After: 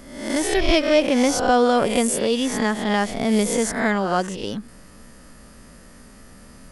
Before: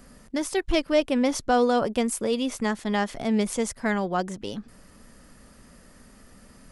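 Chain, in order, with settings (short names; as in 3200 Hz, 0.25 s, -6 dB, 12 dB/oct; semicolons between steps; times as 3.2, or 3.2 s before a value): spectral swells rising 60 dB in 0.74 s; gain +3.5 dB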